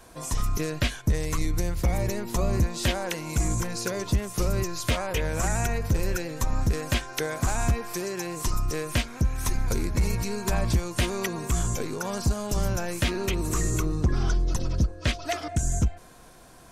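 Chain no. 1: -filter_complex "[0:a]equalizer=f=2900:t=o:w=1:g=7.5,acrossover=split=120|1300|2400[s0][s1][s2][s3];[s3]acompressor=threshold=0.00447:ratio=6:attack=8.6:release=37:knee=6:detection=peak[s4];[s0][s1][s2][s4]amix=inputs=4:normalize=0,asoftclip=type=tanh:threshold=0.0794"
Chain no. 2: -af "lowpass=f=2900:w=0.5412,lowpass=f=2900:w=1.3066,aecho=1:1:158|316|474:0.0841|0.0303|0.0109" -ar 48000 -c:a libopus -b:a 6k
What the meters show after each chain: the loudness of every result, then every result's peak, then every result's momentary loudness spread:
-31.0 LUFS, -30.0 LUFS; -22.0 dBFS, -13.0 dBFS; 3 LU, 6 LU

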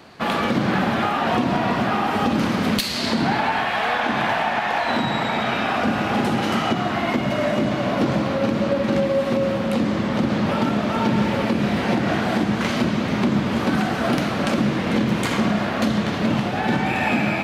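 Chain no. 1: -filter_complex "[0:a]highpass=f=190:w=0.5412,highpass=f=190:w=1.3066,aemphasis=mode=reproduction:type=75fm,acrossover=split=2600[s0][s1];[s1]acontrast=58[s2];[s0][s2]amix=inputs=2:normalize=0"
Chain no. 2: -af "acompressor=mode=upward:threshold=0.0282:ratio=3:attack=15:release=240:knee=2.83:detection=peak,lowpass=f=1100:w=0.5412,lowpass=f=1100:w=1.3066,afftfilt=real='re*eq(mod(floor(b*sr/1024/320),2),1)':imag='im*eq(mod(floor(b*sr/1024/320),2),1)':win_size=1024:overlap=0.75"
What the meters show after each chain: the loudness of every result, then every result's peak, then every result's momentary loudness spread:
-21.5 LUFS, -29.0 LUFS; -7.5 dBFS, -13.0 dBFS; 2 LU, 7 LU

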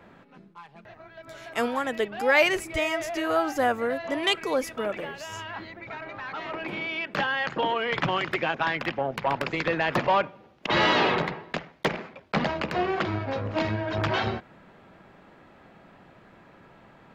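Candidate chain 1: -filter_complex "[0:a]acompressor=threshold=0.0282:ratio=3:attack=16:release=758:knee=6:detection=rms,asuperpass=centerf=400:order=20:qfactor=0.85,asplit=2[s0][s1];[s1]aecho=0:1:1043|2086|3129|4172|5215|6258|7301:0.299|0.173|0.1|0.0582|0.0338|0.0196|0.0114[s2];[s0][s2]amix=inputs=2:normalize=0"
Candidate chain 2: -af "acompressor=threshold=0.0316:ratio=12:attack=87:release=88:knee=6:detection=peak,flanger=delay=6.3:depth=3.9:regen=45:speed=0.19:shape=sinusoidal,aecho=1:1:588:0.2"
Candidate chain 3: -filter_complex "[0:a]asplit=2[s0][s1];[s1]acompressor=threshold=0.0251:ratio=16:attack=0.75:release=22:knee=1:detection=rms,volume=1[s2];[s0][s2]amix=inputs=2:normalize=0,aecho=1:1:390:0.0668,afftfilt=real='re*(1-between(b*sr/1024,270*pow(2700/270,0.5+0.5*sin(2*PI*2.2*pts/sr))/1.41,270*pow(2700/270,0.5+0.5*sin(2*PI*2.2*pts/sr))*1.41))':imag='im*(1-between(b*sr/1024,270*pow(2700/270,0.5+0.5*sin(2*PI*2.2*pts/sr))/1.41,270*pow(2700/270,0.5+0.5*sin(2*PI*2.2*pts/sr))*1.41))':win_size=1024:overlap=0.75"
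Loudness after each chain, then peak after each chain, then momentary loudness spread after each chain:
-39.5 LUFS, -34.0 LUFS, -26.5 LUFS; -21.5 dBFS, -14.5 dBFS, -10.0 dBFS; 15 LU, 14 LU, 12 LU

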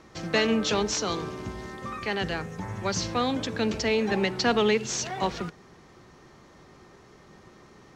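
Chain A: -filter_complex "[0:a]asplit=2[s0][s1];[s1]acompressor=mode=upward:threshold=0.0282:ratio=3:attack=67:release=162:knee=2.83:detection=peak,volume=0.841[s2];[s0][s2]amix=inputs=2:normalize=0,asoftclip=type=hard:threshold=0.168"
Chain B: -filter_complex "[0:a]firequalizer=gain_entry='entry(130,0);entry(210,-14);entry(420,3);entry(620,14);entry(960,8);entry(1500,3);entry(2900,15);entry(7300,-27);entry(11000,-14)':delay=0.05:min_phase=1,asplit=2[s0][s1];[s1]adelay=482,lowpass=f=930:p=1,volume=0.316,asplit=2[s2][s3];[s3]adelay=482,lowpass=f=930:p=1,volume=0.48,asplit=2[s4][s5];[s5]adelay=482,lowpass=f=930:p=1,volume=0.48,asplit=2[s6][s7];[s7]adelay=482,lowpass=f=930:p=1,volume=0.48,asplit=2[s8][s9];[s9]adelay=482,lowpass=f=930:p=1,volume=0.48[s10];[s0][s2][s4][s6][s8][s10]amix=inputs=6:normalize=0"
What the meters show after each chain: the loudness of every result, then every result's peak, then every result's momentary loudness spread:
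-23.0 LUFS, -20.5 LUFS; -15.5 dBFS, -2.5 dBFS; 18 LU, 15 LU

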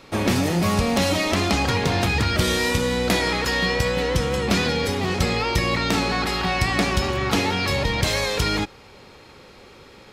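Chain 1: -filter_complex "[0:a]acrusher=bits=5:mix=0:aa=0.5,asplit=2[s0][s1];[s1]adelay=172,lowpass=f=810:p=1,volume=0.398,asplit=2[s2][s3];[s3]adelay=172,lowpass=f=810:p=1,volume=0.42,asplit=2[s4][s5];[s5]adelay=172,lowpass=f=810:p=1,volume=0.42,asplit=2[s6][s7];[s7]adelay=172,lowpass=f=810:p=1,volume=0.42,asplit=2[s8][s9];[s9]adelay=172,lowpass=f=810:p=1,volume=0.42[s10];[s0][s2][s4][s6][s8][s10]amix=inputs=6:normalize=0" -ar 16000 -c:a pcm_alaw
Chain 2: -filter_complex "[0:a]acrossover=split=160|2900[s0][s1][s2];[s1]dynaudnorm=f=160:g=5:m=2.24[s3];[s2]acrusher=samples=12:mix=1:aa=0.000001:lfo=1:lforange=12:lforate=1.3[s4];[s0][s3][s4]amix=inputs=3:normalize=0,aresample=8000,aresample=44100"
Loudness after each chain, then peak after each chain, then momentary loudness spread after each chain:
-21.0 LUFS, -18.0 LUFS; -7.5 dBFS, -1.5 dBFS; 2 LU, 2 LU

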